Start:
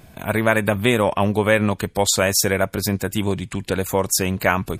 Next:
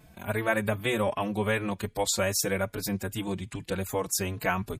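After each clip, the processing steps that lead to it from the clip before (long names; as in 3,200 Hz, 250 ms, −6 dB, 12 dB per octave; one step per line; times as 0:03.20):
barber-pole flanger 4.2 ms +2.5 Hz
level −6 dB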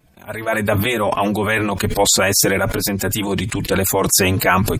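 automatic gain control gain up to 12.5 dB
harmonic and percussive parts rebalanced percussive +9 dB
level that may fall only so fast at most 24 dB per second
level −7 dB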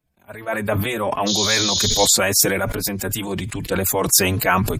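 healed spectral selection 0:01.30–0:02.04, 2,700–6,800 Hz after
high-shelf EQ 10,000 Hz +4.5 dB
multiband upward and downward expander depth 40%
level −3.5 dB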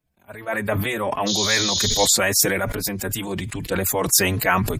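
dynamic equaliser 1,900 Hz, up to +6 dB, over −41 dBFS, Q 5.9
level −2 dB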